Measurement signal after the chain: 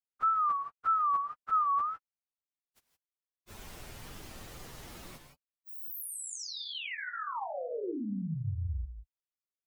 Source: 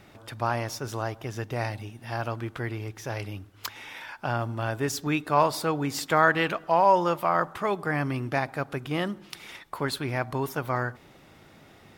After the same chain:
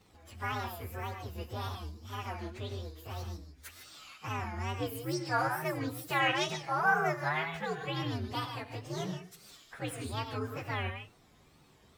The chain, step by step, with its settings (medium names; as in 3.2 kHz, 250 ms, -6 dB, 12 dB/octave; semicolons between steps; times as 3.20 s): frequency axis rescaled in octaves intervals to 129%; gated-style reverb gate 180 ms rising, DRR 5.5 dB; wow and flutter 140 cents; trim -6 dB